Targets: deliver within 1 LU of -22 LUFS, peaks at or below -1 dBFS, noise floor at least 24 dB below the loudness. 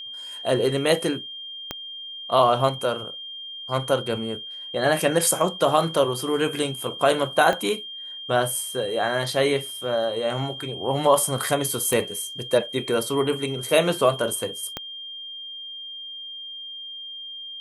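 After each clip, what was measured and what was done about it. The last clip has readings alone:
clicks 4; steady tone 3200 Hz; tone level -34 dBFS; loudness -24.5 LUFS; peak -5.0 dBFS; loudness target -22.0 LUFS
-> de-click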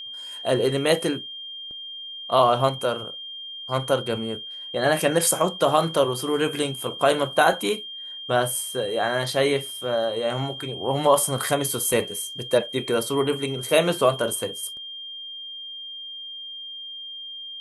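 clicks 2; steady tone 3200 Hz; tone level -34 dBFS
-> notch 3200 Hz, Q 30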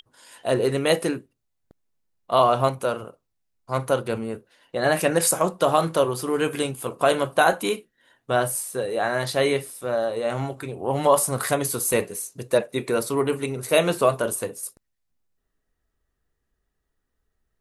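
steady tone none; loudness -23.5 LUFS; peak -5.0 dBFS; loudness target -22.0 LUFS
-> gain +1.5 dB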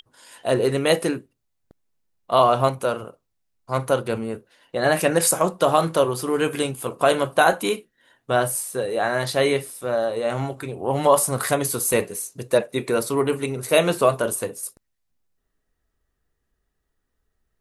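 loudness -22.0 LUFS; peak -3.5 dBFS; noise floor -76 dBFS

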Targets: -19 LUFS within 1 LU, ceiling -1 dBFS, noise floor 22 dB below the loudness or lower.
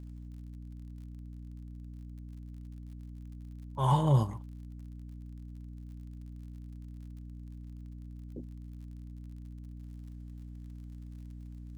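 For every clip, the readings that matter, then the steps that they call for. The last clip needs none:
ticks 52/s; hum 60 Hz; harmonics up to 300 Hz; hum level -43 dBFS; loudness -39.0 LUFS; peak -14.5 dBFS; loudness target -19.0 LUFS
-> de-click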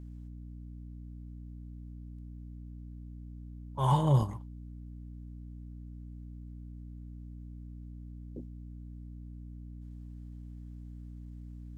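ticks 0.25/s; hum 60 Hz; harmonics up to 300 Hz; hum level -43 dBFS
-> de-hum 60 Hz, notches 5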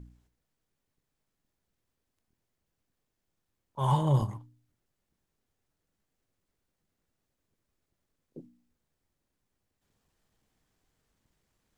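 hum none; loudness -28.5 LUFS; peak -14.0 dBFS; loudness target -19.0 LUFS
-> gain +9.5 dB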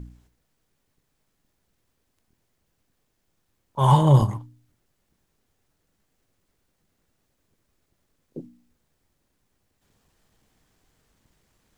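loudness -19.0 LUFS; peak -4.5 dBFS; noise floor -74 dBFS

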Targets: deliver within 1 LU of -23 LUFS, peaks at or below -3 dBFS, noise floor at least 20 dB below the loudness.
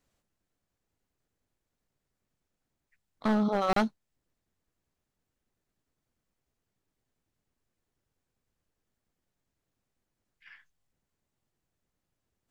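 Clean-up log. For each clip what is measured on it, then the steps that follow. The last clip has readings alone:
clipped 0.2%; flat tops at -20.5 dBFS; dropouts 1; longest dropout 33 ms; loudness -28.5 LUFS; peak -20.5 dBFS; loudness target -23.0 LUFS
-> clip repair -20.5 dBFS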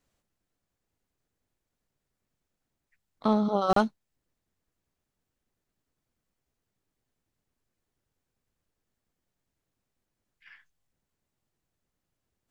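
clipped 0.0%; dropouts 1; longest dropout 33 ms
-> interpolate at 3.73, 33 ms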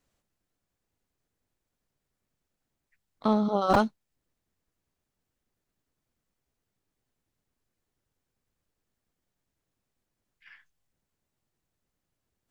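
dropouts 0; loudness -26.0 LUFS; peak -10.5 dBFS; loudness target -23.0 LUFS
-> gain +3 dB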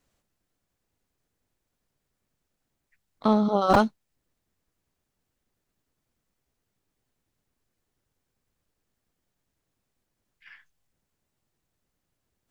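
loudness -23.0 LUFS; peak -7.5 dBFS; noise floor -81 dBFS

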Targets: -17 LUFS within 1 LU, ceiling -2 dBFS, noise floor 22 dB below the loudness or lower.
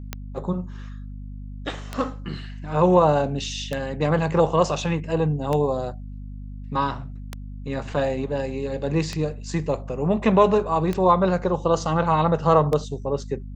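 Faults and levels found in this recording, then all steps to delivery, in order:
clicks 8; hum 50 Hz; harmonics up to 250 Hz; hum level -32 dBFS; loudness -23.0 LUFS; peak -4.5 dBFS; loudness target -17.0 LUFS
-> de-click; notches 50/100/150/200/250 Hz; gain +6 dB; limiter -2 dBFS

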